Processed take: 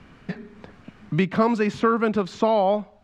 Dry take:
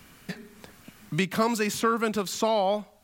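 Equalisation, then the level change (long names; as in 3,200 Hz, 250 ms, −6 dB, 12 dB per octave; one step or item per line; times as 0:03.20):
head-to-tape spacing loss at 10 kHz 29 dB
+6.5 dB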